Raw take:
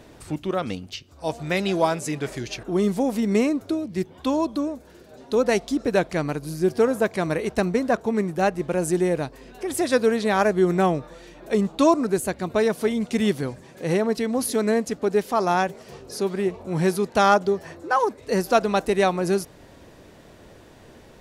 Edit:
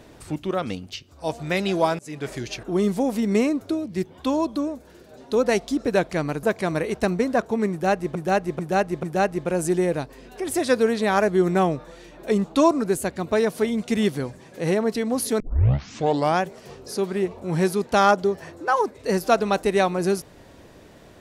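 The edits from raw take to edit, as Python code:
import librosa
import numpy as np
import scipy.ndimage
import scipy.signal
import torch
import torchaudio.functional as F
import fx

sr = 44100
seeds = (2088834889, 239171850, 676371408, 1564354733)

y = fx.edit(x, sr, fx.fade_in_from(start_s=1.99, length_s=0.32, floor_db=-23.0),
    fx.cut(start_s=6.43, length_s=0.55),
    fx.repeat(start_s=8.26, length_s=0.44, count=4),
    fx.tape_start(start_s=14.63, length_s=1.01), tone=tone)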